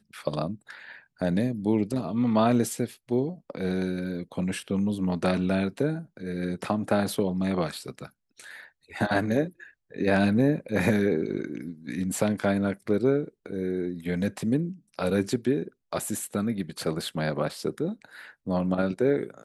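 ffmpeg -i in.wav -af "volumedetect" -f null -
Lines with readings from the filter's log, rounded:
mean_volume: -27.5 dB
max_volume: -9.7 dB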